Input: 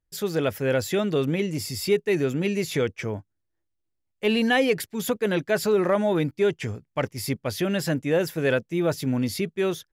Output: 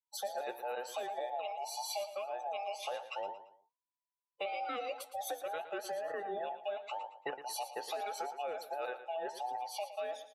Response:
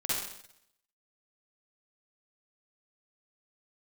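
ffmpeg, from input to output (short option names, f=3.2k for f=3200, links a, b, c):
-filter_complex "[0:a]afftfilt=real='real(if(between(b,1,1008),(2*floor((b-1)/48)+1)*48-b,b),0)':imag='imag(if(between(b,1,1008),(2*floor((b-1)/48)+1)*48-b,b),0)*if(between(b,1,1008),-1,1)':win_size=2048:overlap=0.75,afftdn=nr=22:nf=-40,highpass=340,acompressor=threshold=-32dB:ratio=8,flanger=delay=5.1:depth=8.8:regen=78:speed=0.86:shape=triangular,asplit=2[a][b];[b]aecho=0:1:109|218|327:0.251|0.0854|0.029[c];[a][c]amix=inputs=2:normalize=0,asetrate=42336,aresample=44100"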